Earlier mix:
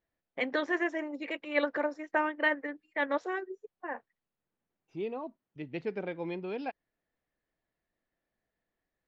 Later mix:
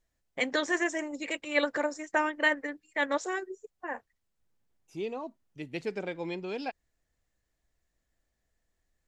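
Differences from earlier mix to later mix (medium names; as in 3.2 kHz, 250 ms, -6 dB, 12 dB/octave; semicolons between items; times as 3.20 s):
first voice: remove high-pass 180 Hz 12 dB/octave; master: remove distance through air 280 m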